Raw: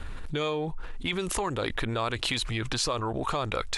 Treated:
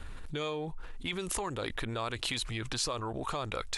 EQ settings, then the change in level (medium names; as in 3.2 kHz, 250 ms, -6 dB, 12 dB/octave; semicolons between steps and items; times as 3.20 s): treble shelf 6.7 kHz +6 dB; -6.0 dB